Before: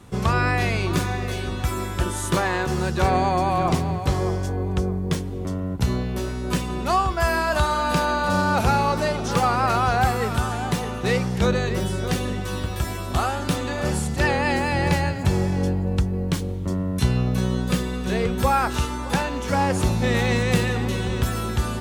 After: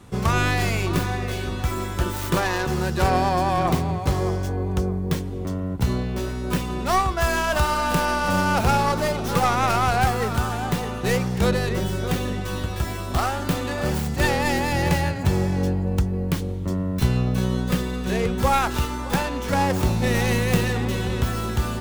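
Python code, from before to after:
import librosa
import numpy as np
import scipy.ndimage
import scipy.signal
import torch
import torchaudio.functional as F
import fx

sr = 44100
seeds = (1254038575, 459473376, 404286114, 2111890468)

y = fx.tracing_dist(x, sr, depth_ms=0.23)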